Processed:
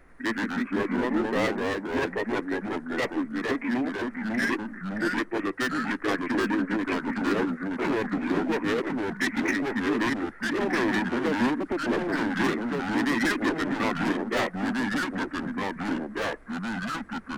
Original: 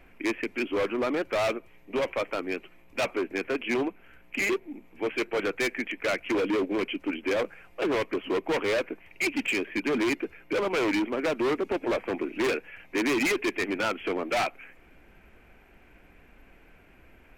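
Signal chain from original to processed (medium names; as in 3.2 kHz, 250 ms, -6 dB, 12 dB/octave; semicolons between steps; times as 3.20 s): formant shift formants -4 st; ever faster or slower copies 90 ms, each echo -2 st, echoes 2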